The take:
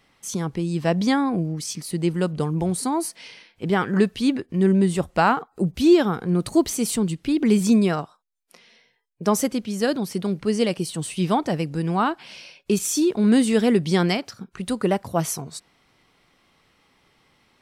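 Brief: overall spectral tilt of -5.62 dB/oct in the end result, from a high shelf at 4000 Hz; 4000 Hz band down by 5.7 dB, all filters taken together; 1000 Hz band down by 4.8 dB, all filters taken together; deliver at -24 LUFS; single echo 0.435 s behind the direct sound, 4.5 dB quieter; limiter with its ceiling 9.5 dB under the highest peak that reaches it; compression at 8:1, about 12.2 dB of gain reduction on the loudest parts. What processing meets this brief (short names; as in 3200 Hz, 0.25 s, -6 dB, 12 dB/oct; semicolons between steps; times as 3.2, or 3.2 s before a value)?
bell 1000 Hz -6 dB; high shelf 4000 Hz -4.5 dB; bell 4000 Hz -4.5 dB; compressor 8:1, threshold -24 dBFS; limiter -23 dBFS; echo 0.435 s -4.5 dB; gain +7 dB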